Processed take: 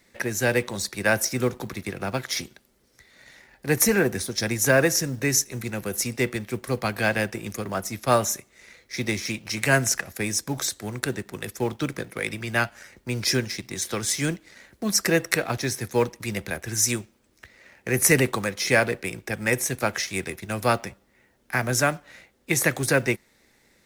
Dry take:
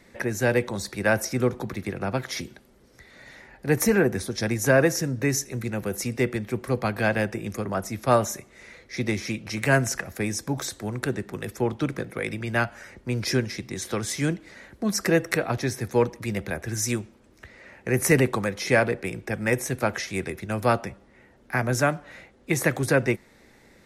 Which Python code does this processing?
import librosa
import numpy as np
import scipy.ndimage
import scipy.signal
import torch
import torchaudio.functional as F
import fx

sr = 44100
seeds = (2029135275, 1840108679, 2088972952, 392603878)

y = fx.law_mismatch(x, sr, coded='A')
y = fx.high_shelf(y, sr, hz=2200.0, db=9.0)
y = F.gain(torch.from_numpy(y), -1.0).numpy()